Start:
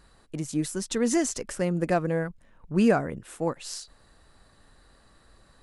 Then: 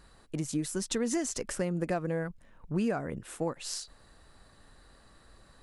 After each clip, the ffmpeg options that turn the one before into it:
ffmpeg -i in.wav -af "acompressor=threshold=-28dB:ratio=4" out.wav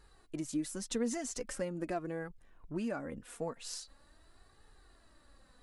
ffmpeg -i in.wav -af "flanger=delay=2.3:depth=2.2:regen=27:speed=0.43:shape=triangular,volume=-2dB" out.wav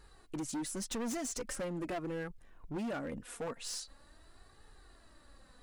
ffmpeg -i in.wav -af "asoftclip=type=hard:threshold=-37.5dB,volume=3dB" out.wav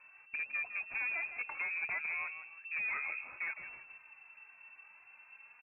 ffmpeg -i in.wav -filter_complex "[0:a]asplit=5[link_01][link_02][link_03][link_04][link_05];[link_02]adelay=159,afreqshift=-38,volume=-10.5dB[link_06];[link_03]adelay=318,afreqshift=-76,volume=-19.9dB[link_07];[link_04]adelay=477,afreqshift=-114,volume=-29.2dB[link_08];[link_05]adelay=636,afreqshift=-152,volume=-38.6dB[link_09];[link_01][link_06][link_07][link_08][link_09]amix=inputs=5:normalize=0,lowpass=frequency=2300:width_type=q:width=0.5098,lowpass=frequency=2300:width_type=q:width=0.6013,lowpass=frequency=2300:width_type=q:width=0.9,lowpass=frequency=2300:width_type=q:width=2.563,afreqshift=-2700" out.wav

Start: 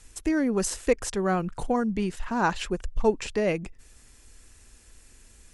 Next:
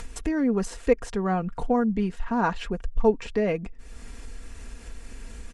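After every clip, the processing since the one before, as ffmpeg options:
ffmpeg -i in.wav -af "lowpass=frequency=1900:poles=1,acompressor=mode=upward:threshold=-27dB:ratio=2.5,aecho=1:1:4.3:0.46" out.wav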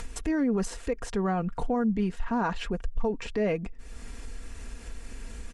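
ffmpeg -i in.wav -af "alimiter=limit=-19.5dB:level=0:latency=1:release=34" out.wav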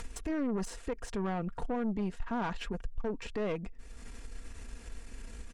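ffmpeg -i in.wav -af "aeval=exprs='(tanh(17.8*val(0)+0.5)-tanh(0.5))/17.8':channel_layout=same,volume=-3dB" out.wav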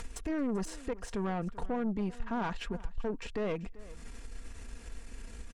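ffmpeg -i in.wav -af "aecho=1:1:388:0.106" out.wav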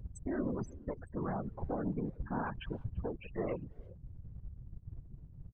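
ffmpeg -i in.wav -filter_complex "[0:a]afftfilt=real='re*gte(hypot(re,im),0.02)':imag='im*gte(hypot(re,im),0.02)':win_size=1024:overlap=0.75,asplit=2[link_01][link_02];[link_02]adelay=340,highpass=300,lowpass=3400,asoftclip=type=hard:threshold=-33dB,volume=-26dB[link_03];[link_01][link_03]amix=inputs=2:normalize=0,afftfilt=real='hypot(re,im)*cos(2*PI*random(0))':imag='hypot(re,im)*sin(2*PI*random(1))':win_size=512:overlap=0.75,volume=3dB" out.wav

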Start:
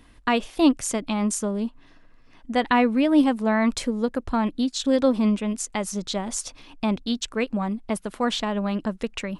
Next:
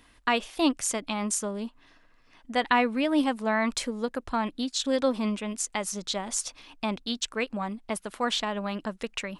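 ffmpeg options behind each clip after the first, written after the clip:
ffmpeg -i in.wav -af "lowshelf=frequency=480:gain=-9.5" out.wav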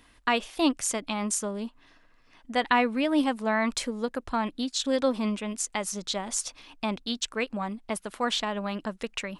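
ffmpeg -i in.wav -af anull out.wav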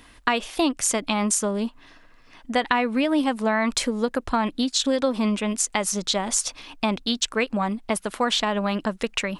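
ffmpeg -i in.wav -af "acompressor=threshold=-26dB:ratio=6,volume=8dB" out.wav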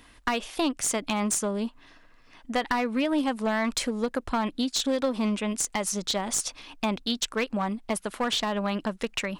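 ffmpeg -i in.wav -af "aeval=exprs='clip(val(0),-1,0.112)':channel_layout=same,volume=-3.5dB" out.wav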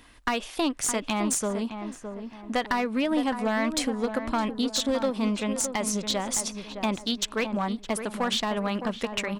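ffmpeg -i in.wav -filter_complex "[0:a]asplit=2[link_01][link_02];[link_02]adelay=613,lowpass=frequency=1500:poles=1,volume=-8dB,asplit=2[link_03][link_04];[link_04]adelay=613,lowpass=frequency=1500:poles=1,volume=0.4,asplit=2[link_05][link_06];[link_06]adelay=613,lowpass=frequency=1500:poles=1,volume=0.4,asplit=2[link_07][link_08];[link_08]adelay=613,lowpass=frequency=1500:poles=1,volume=0.4,asplit=2[link_09][link_10];[link_10]adelay=613,lowpass=frequency=1500:poles=1,volume=0.4[link_11];[link_01][link_03][link_05][link_07][link_09][link_11]amix=inputs=6:normalize=0" out.wav

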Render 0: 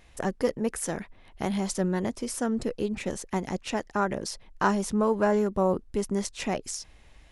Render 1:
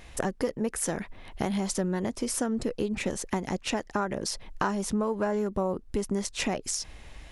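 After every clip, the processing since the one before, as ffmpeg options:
ffmpeg -i in.wav -af "acompressor=threshold=-35dB:ratio=4,volume=8dB" out.wav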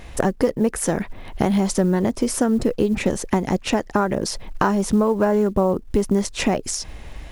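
ffmpeg -i in.wav -af "tiltshelf=frequency=1300:gain=3,acrusher=bits=9:mode=log:mix=0:aa=0.000001,volume=7.5dB" out.wav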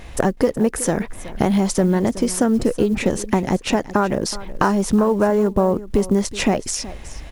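ffmpeg -i in.wav -af "aecho=1:1:372:0.15,volume=1.5dB" out.wav

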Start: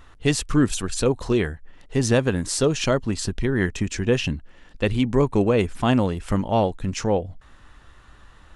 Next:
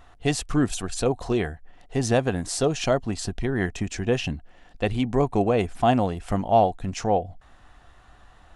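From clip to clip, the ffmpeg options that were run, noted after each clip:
ffmpeg -i in.wav -af "equalizer=frequency=720:width_type=o:width=0.29:gain=13.5,volume=-3.5dB" out.wav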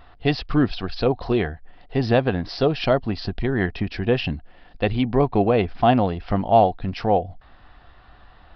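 ffmpeg -i in.wav -af "aresample=11025,aresample=44100,volume=3dB" out.wav

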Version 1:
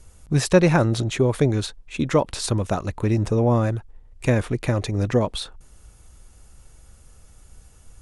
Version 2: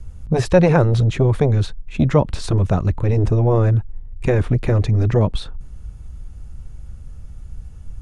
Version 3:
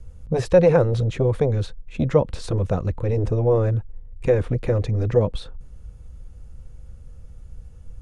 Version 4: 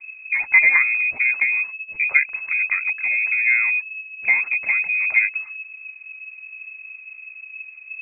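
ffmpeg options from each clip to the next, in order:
ffmpeg -i in.wav -filter_complex "[0:a]aemphasis=mode=reproduction:type=50kf,acrossover=split=210|1200|2800[link_01][link_02][link_03][link_04];[link_01]aeval=exprs='0.211*sin(PI/2*3.16*val(0)/0.211)':channel_layout=same[link_05];[link_05][link_02][link_03][link_04]amix=inputs=4:normalize=0,volume=1dB" out.wav
ffmpeg -i in.wav -af "equalizer=frequency=500:width_type=o:width=0.29:gain=10.5,volume=-6dB" out.wav
ffmpeg -i in.wav -af "acrusher=bits=11:mix=0:aa=0.000001,lowpass=frequency=2200:width_type=q:width=0.5098,lowpass=frequency=2200:width_type=q:width=0.6013,lowpass=frequency=2200:width_type=q:width=0.9,lowpass=frequency=2200:width_type=q:width=2.563,afreqshift=-2600" out.wav

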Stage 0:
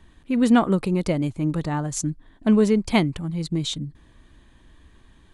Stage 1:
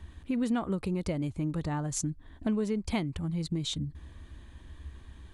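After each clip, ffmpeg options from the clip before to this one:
ffmpeg -i in.wav -af "equalizer=frequency=73:width=2.3:gain=14,acompressor=threshold=-31dB:ratio=3" out.wav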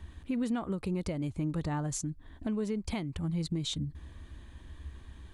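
ffmpeg -i in.wav -af "alimiter=limit=-24dB:level=0:latency=1:release=282" out.wav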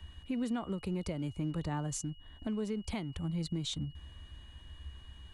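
ffmpeg -i in.wav -filter_complex "[0:a]acrossover=split=240|390|3100[link_01][link_02][link_03][link_04];[link_02]aeval=exprs='sgn(val(0))*max(abs(val(0))-0.00133,0)':channel_layout=same[link_05];[link_01][link_05][link_03][link_04]amix=inputs=4:normalize=0,aeval=exprs='val(0)+0.00158*sin(2*PI*2900*n/s)':channel_layout=same,volume=-2.5dB" out.wav

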